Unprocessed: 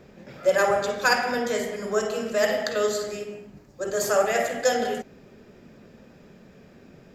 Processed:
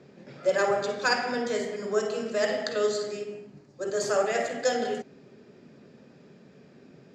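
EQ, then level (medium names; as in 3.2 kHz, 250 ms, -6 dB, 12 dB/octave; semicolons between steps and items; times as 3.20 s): cabinet simulation 120–8000 Hz, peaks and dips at 140 Hz +6 dB, 270 Hz +4 dB, 400 Hz +4 dB, 4.4 kHz +4 dB; -4.5 dB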